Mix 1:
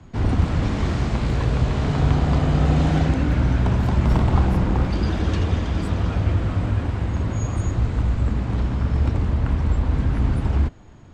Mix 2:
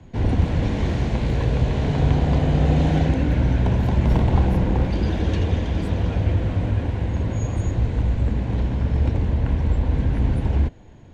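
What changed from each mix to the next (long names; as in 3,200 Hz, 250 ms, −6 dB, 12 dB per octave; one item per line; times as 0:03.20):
master: add thirty-one-band graphic EQ 500 Hz +4 dB, 1,250 Hz −11 dB, 5,000 Hz −5 dB, 8,000 Hz −7 dB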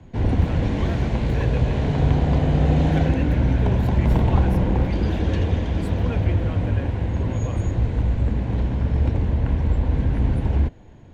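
speech +6.5 dB
master: add parametric band 6,200 Hz −3 dB 2.1 octaves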